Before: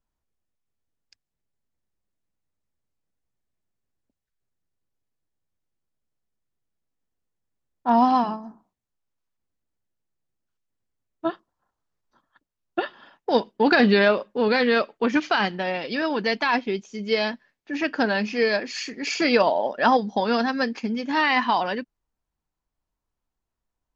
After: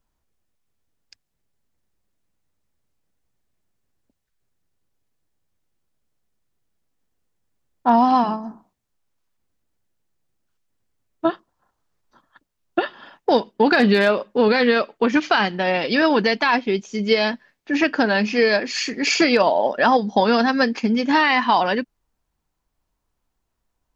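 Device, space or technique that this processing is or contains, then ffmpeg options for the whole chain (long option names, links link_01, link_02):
clipper into limiter: -af "asoftclip=type=hard:threshold=-7.5dB,alimiter=limit=-14.5dB:level=0:latency=1:release=386,volume=8dB"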